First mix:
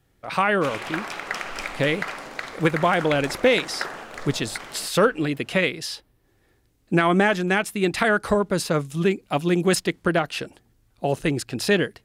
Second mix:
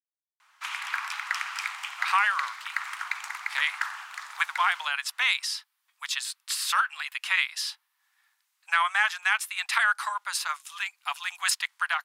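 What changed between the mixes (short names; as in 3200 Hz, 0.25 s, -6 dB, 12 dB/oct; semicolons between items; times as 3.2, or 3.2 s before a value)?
speech: entry +1.75 s; master: add steep high-pass 930 Hz 48 dB/oct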